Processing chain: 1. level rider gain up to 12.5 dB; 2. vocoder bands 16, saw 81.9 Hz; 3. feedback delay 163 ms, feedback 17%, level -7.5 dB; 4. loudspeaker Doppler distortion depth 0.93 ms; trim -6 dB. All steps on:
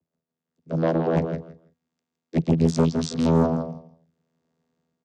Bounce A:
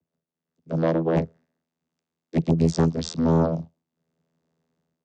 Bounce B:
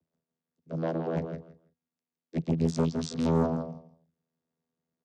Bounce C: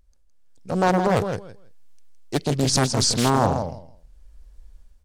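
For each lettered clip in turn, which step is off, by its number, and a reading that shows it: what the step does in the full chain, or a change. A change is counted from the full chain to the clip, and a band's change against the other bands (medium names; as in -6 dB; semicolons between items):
3, momentary loudness spread change -3 LU; 1, momentary loudness spread change +1 LU; 2, 250 Hz band -11.5 dB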